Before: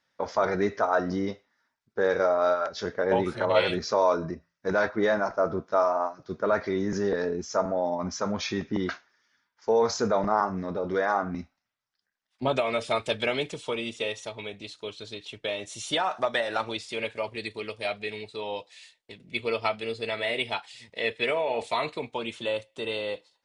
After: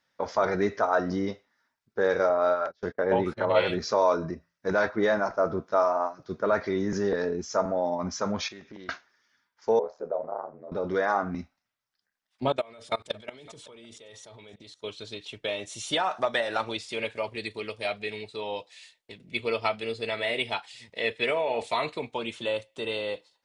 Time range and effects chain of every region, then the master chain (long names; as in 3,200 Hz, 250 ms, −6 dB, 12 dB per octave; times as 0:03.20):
0:02.29–0:03.79: low-pass filter 3,000 Hz 6 dB per octave + noise gate −37 dBFS, range −28 dB
0:08.48–0:08.89: low-shelf EQ 340 Hz −10 dB + downward compressor 3 to 1, threshold −44 dBFS + highs frequency-modulated by the lows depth 0.11 ms
0:09.79–0:10.72: resonant band-pass 560 Hz, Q 3.5 + ring modulation 39 Hz
0:12.52–0:14.84: output level in coarse steps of 24 dB + parametric band 2,600 Hz −8.5 dB 0.25 octaves + single-tap delay 560 ms −21.5 dB
whole clip: no processing